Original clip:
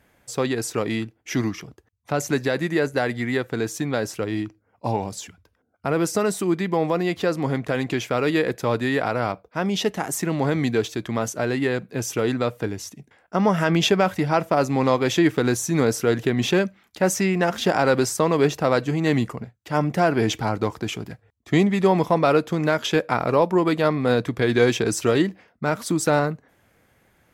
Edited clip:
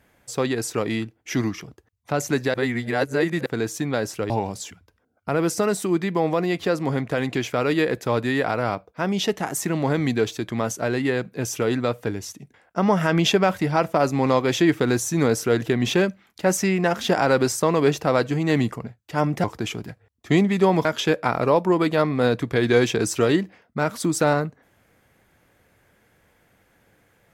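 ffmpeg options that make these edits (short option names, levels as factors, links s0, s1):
-filter_complex "[0:a]asplit=6[s0][s1][s2][s3][s4][s5];[s0]atrim=end=2.542[s6];[s1]atrim=start=2.538:end=3.462,asetpts=PTS-STARTPTS,areverse[s7];[s2]atrim=start=3.458:end=4.302[s8];[s3]atrim=start=4.868:end=20.012[s9];[s4]atrim=start=20.658:end=22.072[s10];[s5]atrim=start=22.708[s11];[s6][s7]acrossfade=d=0.004:c1=hsin:c2=hsin[s12];[s12][s8]acrossfade=d=0.004:c1=hsin:c2=hsin[s13];[s13][s9]acrossfade=d=0.004:c1=hsin:c2=hsin[s14];[s14][s10]acrossfade=d=0.004:c1=hsin:c2=hsin[s15];[s15][s11]acrossfade=d=0.004:c1=hsin:c2=hsin"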